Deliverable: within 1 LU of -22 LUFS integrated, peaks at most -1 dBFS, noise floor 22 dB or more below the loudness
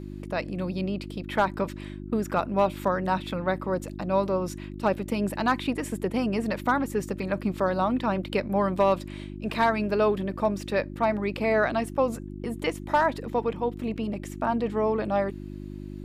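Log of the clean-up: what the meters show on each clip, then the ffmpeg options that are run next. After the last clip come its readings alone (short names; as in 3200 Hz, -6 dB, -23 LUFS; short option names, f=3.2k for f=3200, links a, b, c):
hum 50 Hz; harmonics up to 350 Hz; hum level -35 dBFS; loudness -27.5 LUFS; peak -12.0 dBFS; loudness target -22.0 LUFS
-> -af "bandreject=f=50:t=h:w=4,bandreject=f=100:t=h:w=4,bandreject=f=150:t=h:w=4,bandreject=f=200:t=h:w=4,bandreject=f=250:t=h:w=4,bandreject=f=300:t=h:w=4,bandreject=f=350:t=h:w=4"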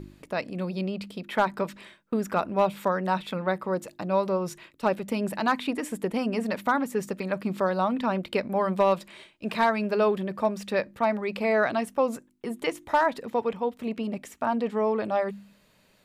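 hum none; loudness -28.0 LUFS; peak -12.5 dBFS; loudness target -22.0 LUFS
-> -af "volume=6dB"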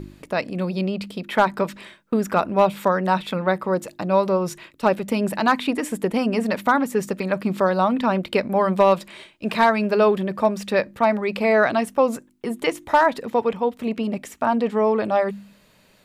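loudness -22.0 LUFS; peak -6.5 dBFS; noise floor -56 dBFS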